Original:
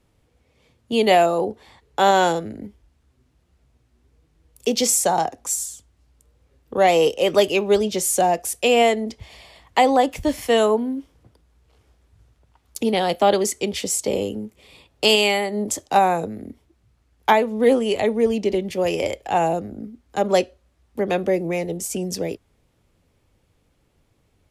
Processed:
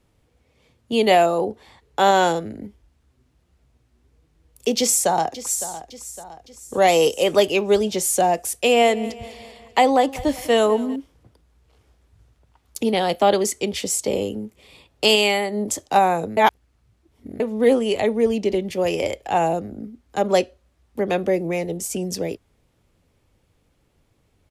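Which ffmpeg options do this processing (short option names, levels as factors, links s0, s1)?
-filter_complex "[0:a]asplit=2[s0][s1];[s1]afade=t=in:st=4.78:d=0.01,afade=t=out:st=5.67:d=0.01,aecho=0:1:560|1120|1680|2240|2800:0.199526|0.0997631|0.0498816|0.0249408|0.0124704[s2];[s0][s2]amix=inputs=2:normalize=0,asettb=1/sr,asplit=3[s3][s4][s5];[s3]atrim=end=6.824[s6];[s4]atrim=start=6.82:end=7.24,asetpts=PTS-STARTPTS,afade=t=in:d=0.004:c=qsin,afade=t=out:st=0.416:d=0.004:c=qsin,bass=f=250:g=0,treble=f=4000:g=7[s7];[s5]atrim=start=7.236[s8];[s6][s7]acrossfade=d=0.004:c1=hsin:c2=qsin[s9];[s9][s8]acrossfade=d=0.004:c1=qsin:c2=hsin,asettb=1/sr,asplit=3[s10][s11][s12];[s10]atrim=end=8.444[s13];[s11]atrim=start=8.44:end=10.96,asetpts=PTS-STARTPTS,afade=t=in:d=0.004:c=qsin,afade=t=out:st=2.516:d=0.004:c=qsin,aecho=1:1:197|394|591|788|985:0.119|0.0654|0.036|0.0198|0.0109,atrim=end_sample=111132[s14];[s12]atrim=start=10.956[s15];[s13][s14]acrossfade=d=0.004:c1=hsin:c2=qsin[s16];[s16][s15]acrossfade=d=0.004:c1=qsin:c2=hsin,asplit=3[s17][s18][s19];[s17]atrim=end=16.372[s20];[s18]atrim=start=16.368:end=17.402,asetpts=PTS-STARTPTS,areverse[s21];[s19]atrim=start=17.398[s22];[s20][s21]acrossfade=d=0.004:c1=hsin:c2=hsin[s23];[s23][s22]acrossfade=d=0.004:c1=hsin:c2=hsin"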